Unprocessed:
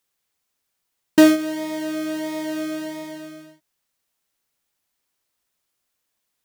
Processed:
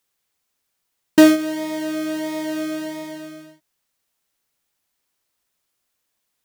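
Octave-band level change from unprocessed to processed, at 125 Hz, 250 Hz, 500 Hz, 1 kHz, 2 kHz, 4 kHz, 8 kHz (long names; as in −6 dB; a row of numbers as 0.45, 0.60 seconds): +1.5, +1.5, +1.5, +1.5, +1.5, +1.5, +1.5 decibels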